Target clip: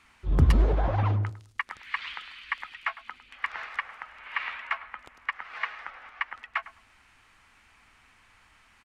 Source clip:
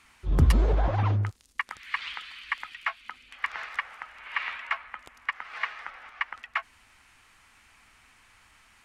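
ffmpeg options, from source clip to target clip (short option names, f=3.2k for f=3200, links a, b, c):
-filter_complex "[0:a]highshelf=f=5.6k:g=-8.5,asplit=2[a][b];[b]adelay=104,lowpass=f=1.3k:p=1,volume=-13.5dB,asplit=2[c][d];[d]adelay=104,lowpass=f=1.3k:p=1,volume=0.24,asplit=2[e][f];[f]adelay=104,lowpass=f=1.3k:p=1,volume=0.24[g];[c][e][g]amix=inputs=3:normalize=0[h];[a][h]amix=inputs=2:normalize=0"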